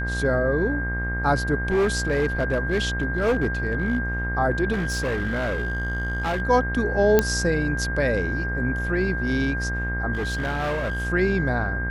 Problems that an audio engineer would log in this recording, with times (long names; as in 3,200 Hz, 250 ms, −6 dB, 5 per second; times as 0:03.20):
mains buzz 60 Hz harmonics 36 −28 dBFS
whistle 1,600 Hz −28 dBFS
0:01.68–0:03.99: clipping −17 dBFS
0:04.72–0:06.42: clipping −21.5 dBFS
0:07.19: click −4 dBFS
0:10.13–0:11.07: clipping −22.5 dBFS